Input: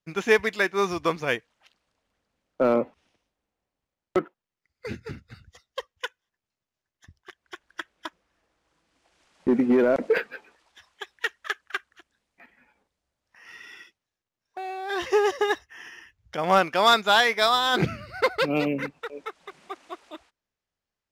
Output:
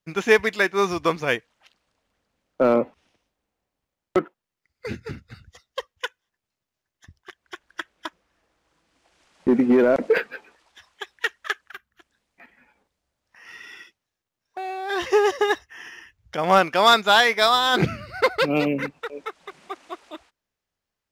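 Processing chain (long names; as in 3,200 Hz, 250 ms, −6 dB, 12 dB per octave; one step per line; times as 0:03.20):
gain on a spectral selection 0:11.72–0:12.00, 240–11,000 Hz −13 dB
level +3 dB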